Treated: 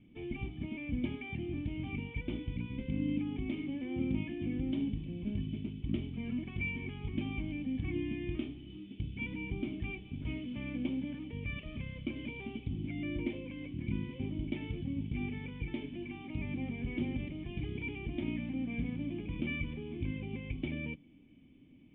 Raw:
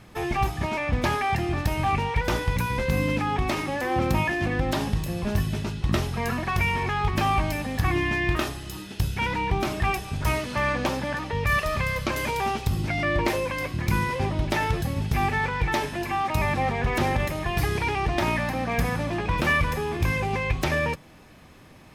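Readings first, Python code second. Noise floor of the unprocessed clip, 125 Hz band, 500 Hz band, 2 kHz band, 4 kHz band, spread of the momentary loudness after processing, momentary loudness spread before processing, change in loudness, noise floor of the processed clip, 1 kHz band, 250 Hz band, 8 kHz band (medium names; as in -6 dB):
-48 dBFS, -12.5 dB, -17.0 dB, -17.5 dB, -16.5 dB, 5 LU, 4 LU, -12.5 dB, -57 dBFS, -30.5 dB, -5.5 dB, under -40 dB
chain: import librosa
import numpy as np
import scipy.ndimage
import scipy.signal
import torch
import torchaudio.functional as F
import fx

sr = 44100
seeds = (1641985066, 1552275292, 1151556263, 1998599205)

y = fx.formant_cascade(x, sr, vowel='i')
y = F.gain(torch.from_numpy(y), -1.0).numpy()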